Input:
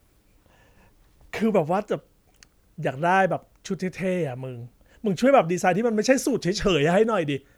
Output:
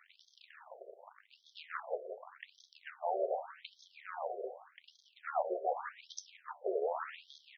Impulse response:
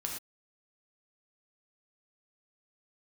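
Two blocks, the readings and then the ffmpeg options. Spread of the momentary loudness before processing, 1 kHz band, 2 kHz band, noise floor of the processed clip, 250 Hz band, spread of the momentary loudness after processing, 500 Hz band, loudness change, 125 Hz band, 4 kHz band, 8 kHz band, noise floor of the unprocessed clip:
13 LU, −14.0 dB, −20.0 dB, −71 dBFS, below −25 dB, 19 LU, −16.0 dB, −16.5 dB, below −40 dB, −19.0 dB, below −15 dB, −62 dBFS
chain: -af "aeval=exprs='val(0)+0.5*0.0841*sgn(val(0))':channel_layout=same,aemphasis=mode=reproduction:type=bsi,agate=range=-25dB:threshold=-14dB:ratio=16:detection=peak,equalizer=frequency=3200:width=0.65:gain=-5.5,bandreject=frequency=74.24:width_type=h:width=4,bandreject=frequency=148.48:width_type=h:width=4,bandreject=frequency=222.72:width_type=h:width=4,bandreject=frequency=296.96:width_type=h:width=4,areverse,acompressor=threshold=-26dB:ratio=6,areverse,asoftclip=type=tanh:threshold=-35.5dB,tremolo=f=77:d=0.788,aecho=1:1:175|350|525|700|875:0.299|0.128|0.0552|0.0237|0.0102,flanger=delay=9.3:depth=4.6:regen=83:speed=0.47:shape=triangular,afftfilt=real='re*between(b*sr/1024,490*pow(4600/490,0.5+0.5*sin(2*PI*0.85*pts/sr))/1.41,490*pow(4600/490,0.5+0.5*sin(2*PI*0.85*pts/sr))*1.41)':imag='im*between(b*sr/1024,490*pow(4600/490,0.5+0.5*sin(2*PI*0.85*pts/sr))/1.41,490*pow(4600/490,0.5+0.5*sin(2*PI*0.85*pts/sr))*1.41)':win_size=1024:overlap=0.75,volume=16dB"

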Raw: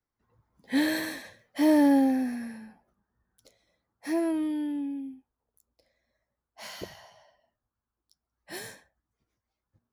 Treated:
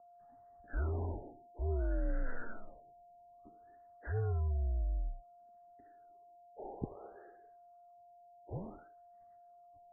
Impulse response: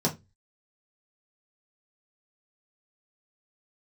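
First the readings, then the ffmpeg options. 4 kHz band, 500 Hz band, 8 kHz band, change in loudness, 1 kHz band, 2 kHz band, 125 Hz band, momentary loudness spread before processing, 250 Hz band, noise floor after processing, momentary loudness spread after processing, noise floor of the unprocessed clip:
below −40 dB, −10.5 dB, below −30 dB, −13.0 dB, −11.5 dB, −14.5 dB, can't be measured, 22 LU, −23.0 dB, −61 dBFS, 19 LU, below −85 dBFS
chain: -af "areverse,acompressor=threshold=-33dB:ratio=16,areverse,aeval=exprs='val(0)+0.001*sin(2*PI*930*n/s)':channel_layout=same,highpass=frequency=180:width_type=q:width=0.5412,highpass=frequency=180:width_type=q:width=1.307,lowpass=frequency=3500:width_type=q:width=0.5176,lowpass=frequency=3500:width_type=q:width=0.7071,lowpass=frequency=3500:width_type=q:width=1.932,afreqshift=-230,afftfilt=real='re*lt(b*sr/1024,900*pow(2100/900,0.5+0.5*sin(2*PI*0.57*pts/sr)))':imag='im*lt(b*sr/1024,900*pow(2100/900,0.5+0.5*sin(2*PI*0.57*pts/sr)))':win_size=1024:overlap=0.75,volume=2.5dB"

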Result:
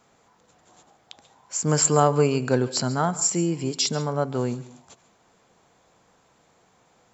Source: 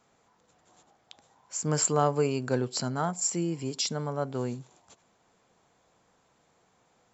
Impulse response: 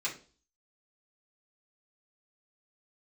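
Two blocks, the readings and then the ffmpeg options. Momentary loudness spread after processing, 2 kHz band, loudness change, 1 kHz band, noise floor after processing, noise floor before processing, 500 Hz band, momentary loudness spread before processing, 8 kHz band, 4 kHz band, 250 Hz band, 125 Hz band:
9 LU, +6.0 dB, +6.0 dB, +6.0 dB, −62 dBFS, −68 dBFS, +6.0 dB, 9 LU, can't be measured, +6.0 dB, +6.0 dB, +6.5 dB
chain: -filter_complex "[0:a]asplit=2[link_01][link_02];[1:a]atrim=start_sample=2205,adelay=133[link_03];[link_02][link_03]afir=irnorm=-1:irlink=0,volume=-20.5dB[link_04];[link_01][link_04]amix=inputs=2:normalize=0,volume=6dB"

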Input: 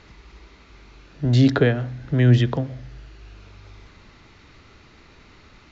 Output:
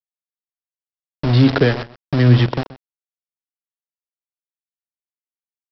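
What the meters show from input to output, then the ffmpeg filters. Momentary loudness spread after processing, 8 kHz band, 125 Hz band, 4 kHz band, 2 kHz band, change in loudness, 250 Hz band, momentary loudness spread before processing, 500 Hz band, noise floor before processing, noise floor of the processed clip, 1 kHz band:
14 LU, can't be measured, +3.0 dB, +5.5 dB, +4.0 dB, +4.0 dB, +3.0 dB, 13 LU, +3.0 dB, −51 dBFS, below −85 dBFS, +6.0 dB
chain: -filter_complex "[0:a]aresample=11025,aeval=exprs='val(0)*gte(abs(val(0)),0.0841)':channel_layout=same,aresample=44100,asplit=2[link_01][link_02];[link_02]adelay=128.3,volume=-17dB,highshelf=frequency=4000:gain=-2.89[link_03];[link_01][link_03]amix=inputs=2:normalize=0,volume=3dB"

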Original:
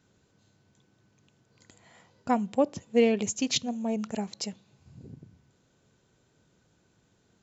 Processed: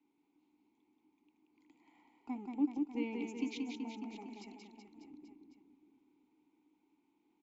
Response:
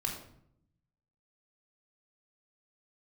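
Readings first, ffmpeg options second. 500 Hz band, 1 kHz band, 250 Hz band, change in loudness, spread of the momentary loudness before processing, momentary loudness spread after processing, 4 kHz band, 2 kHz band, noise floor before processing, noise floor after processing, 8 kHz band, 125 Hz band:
−20.5 dB, −17.0 dB, −8.0 dB, −11.5 dB, 12 LU, 21 LU, −19.0 dB, −12.0 dB, −69 dBFS, −78 dBFS, can't be measured, below −15 dB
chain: -filter_complex "[0:a]acrossover=split=230|530|2500[link_01][link_02][link_03][link_04];[link_01]aeval=exprs='abs(val(0))':channel_layout=same[link_05];[link_03]acompressor=threshold=-45dB:ratio=6[link_06];[link_05][link_02][link_06][link_04]amix=inputs=4:normalize=0,asplit=3[link_07][link_08][link_09];[link_07]bandpass=frequency=300:width_type=q:width=8,volume=0dB[link_10];[link_08]bandpass=frequency=870:width_type=q:width=8,volume=-6dB[link_11];[link_09]bandpass=frequency=2240:width_type=q:width=8,volume=-9dB[link_12];[link_10][link_11][link_12]amix=inputs=3:normalize=0,aecho=1:1:180|378|595.8|835.4|1099:0.631|0.398|0.251|0.158|0.1,volume=3dB"

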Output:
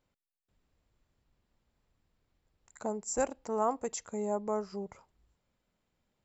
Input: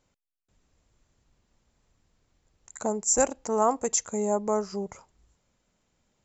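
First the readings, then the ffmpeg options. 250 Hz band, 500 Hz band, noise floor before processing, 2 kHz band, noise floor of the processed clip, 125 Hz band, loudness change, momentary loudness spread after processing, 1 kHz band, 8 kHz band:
−6.5 dB, −6.5 dB, −85 dBFS, −6.5 dB, below −85 dBFS, −6.5 dB, −8.0 dB, 10 LU, −6.5 dB, can't be measured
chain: -af "equalizer=frequency=6500:width_type=o:width=0.5:gain=-10,volume=-6.5dB"

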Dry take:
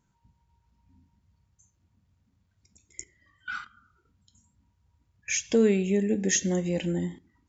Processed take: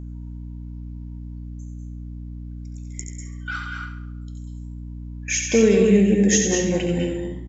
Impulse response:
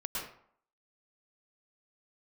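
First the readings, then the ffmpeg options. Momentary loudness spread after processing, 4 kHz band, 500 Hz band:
20 LU, +7.0 dB, +8.0 dB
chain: -filter_complex "[0:a]bandreject=frequency=60:width_type=h:width=6,bandreject=frequency=120:width_type=h:width=6,bandreject=frequency=180:width_type=h:width=6,aecho=1:1:69|138|207|276|345:0.282|0.132|0.0623|0.0293|0.0138,asplit=2[link_01][link_02];[1:a]atrim=start_sample=2205,adelay=89[link_03];[link_02][link_03]afir=irnorm=-1:irlink=0,volume=-4dB[link_04];[link_01][link_04]amix=inputs=2:normalize=0,aeval=exprs='val(0)+0.0141*(sin(2*PI*60*n/s)+sin(2*PI*2*60*n/s)/2+sin(2*PI*3*60*n/s)/3+sin(2*PI*4*60*n/s)/4+sin(2*PI*5*60*n/s)/5)':channel_layout=same,volume=4.5dB"

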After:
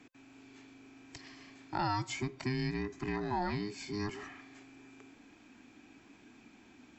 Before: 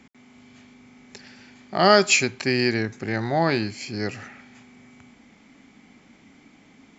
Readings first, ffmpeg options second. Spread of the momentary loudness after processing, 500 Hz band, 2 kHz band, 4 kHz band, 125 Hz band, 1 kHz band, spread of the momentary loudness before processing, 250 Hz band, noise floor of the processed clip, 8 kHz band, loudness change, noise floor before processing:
21 LU, −18.0 dB, −17.5 dB, −18.5 dB, −8.5 dB, −12.0 dB, 14 LU, −11.5 dB, −60 dBFS, can't be measured, −15.0 dB, −55 dBFS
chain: -filter_complex "[0:a]afftfilt=real='real(if(between(b,1,1008),(2*floor((b-1)/24)+1)*24-b,b),0)':imag='imag(if(between(b,1,1008),(2*floor((b-1)/24)+1)*24-b,b),0)*if(between(b,1,1008),-1,1)':win_size=2048:overlap=0.75,acrossover=split=110|1200[link_01][link_02][link_03];[link_01]acompressor=threshold=-42dB:ratio=4[link_04];[link_02]acompressor=threshold=-28dB:ratio=4[link_05];[link_03]acompressor=threshold=-39dB:ratio=4[link_06];[link_04][link_05][link_06]amix=inputs=3:normalize=0,volume=-5.5dB"

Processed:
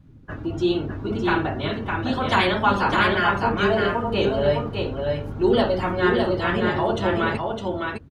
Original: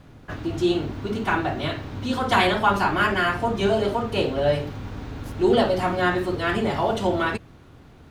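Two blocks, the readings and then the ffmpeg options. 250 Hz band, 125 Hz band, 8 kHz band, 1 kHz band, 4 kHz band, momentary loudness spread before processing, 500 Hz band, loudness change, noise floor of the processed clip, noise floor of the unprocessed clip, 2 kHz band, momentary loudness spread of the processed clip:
+1.5 dB, +2.0 dB, can't be measured, +0.5 dB, +1.0 dB, 12 LU, +1.5 dB, +1.0 dB, −43 dBFS, −48 dBFS, +1.5 dB, 8 LU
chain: -af "afftdn=noise_reduction=15:noise_floor=-41,bandreject=frequency=720:width=17,aecho=1:1:608:0.631"

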